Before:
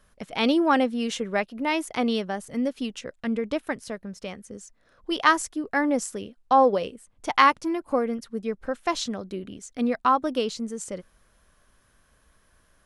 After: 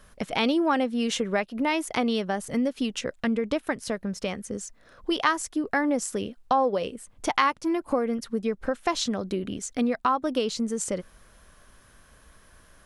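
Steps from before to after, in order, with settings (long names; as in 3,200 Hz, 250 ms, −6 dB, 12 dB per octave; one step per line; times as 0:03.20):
downward compressor 2.5 to 1, threshold −33 dBFS, peak gain reduction 13.5 dB
level +7.5 dB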